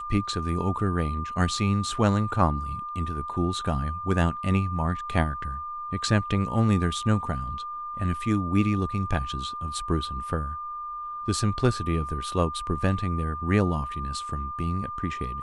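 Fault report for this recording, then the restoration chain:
tone 1200 Hz -32 dBFS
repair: notch 1200 Hz, Q 30

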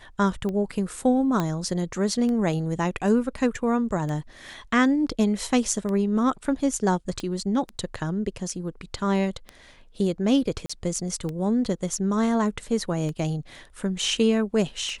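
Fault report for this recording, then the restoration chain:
tick 33 1/3 rpm -20 dBFS
1.4 pop -12 dBFS
7.2 pop -19 dBFS
10.66–10.7 gap 35 ms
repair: de-click; interpolate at 10.66, 35 ms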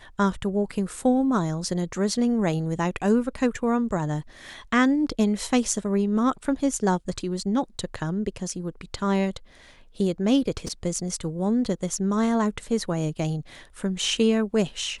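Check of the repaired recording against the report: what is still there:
7.2 pop

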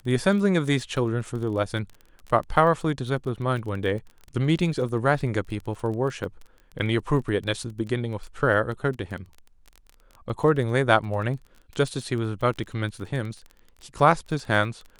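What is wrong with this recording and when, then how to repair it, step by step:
crackle 22/s -33 dBFS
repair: de-click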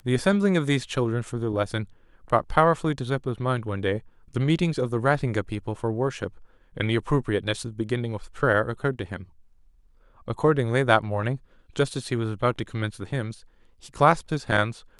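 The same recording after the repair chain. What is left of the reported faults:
none

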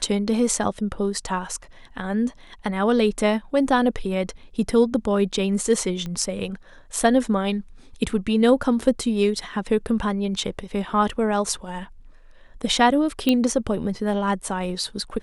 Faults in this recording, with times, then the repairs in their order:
6.06 pop -19 dBFS
13.29 pop -7 dBFS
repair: de-click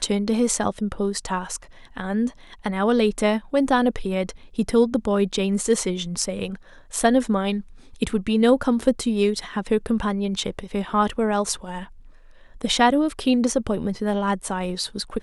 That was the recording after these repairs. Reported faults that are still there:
6.06 pop

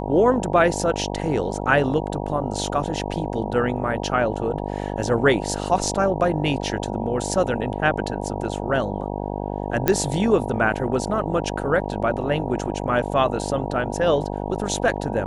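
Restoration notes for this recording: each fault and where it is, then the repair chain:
buzz 50 Hz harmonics 19 -28 dBFS
9.88 pop -4 dBFS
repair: de-click; de-hum 50 Hz, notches 19

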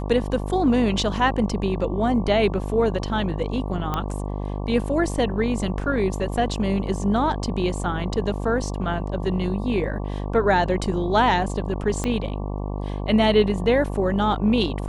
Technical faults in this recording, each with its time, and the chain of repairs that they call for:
buzz 50 Hz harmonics 23 -28 dBFS
3.94 pop -12 dBFS
12.04 pop -12 dBFS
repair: de-click; de-hum 50 Hz, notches 23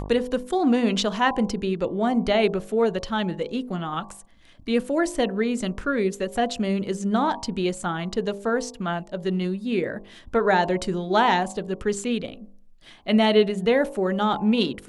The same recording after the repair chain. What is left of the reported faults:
12.04 pop

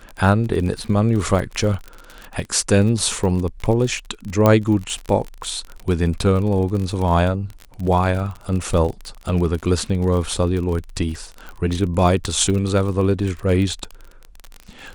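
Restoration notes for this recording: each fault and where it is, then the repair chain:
crackle 38/s -25 dBFS
4.46 pop -3 dBFS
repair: de-click

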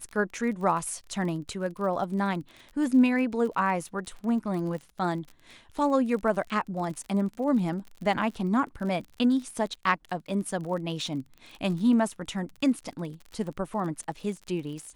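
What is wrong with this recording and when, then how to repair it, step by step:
crackle 40/s -36 dBFS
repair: de-click

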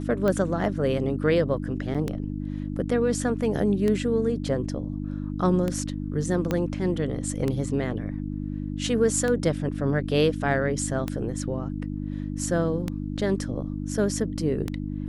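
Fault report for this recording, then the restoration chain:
hum 50 Hz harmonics 6 -31 dBFS
tick 33 1/3 rpm -14 dBFS
1.94–1.95 gap 6.6 ms
6.51 pop -12 dBFS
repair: de-click; de-hum 50 Hz, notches 6; interpolate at 1.94, 6.6 ms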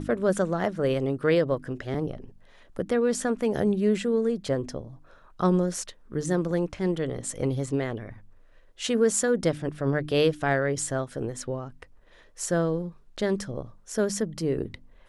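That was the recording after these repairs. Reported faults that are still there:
6.51 pop

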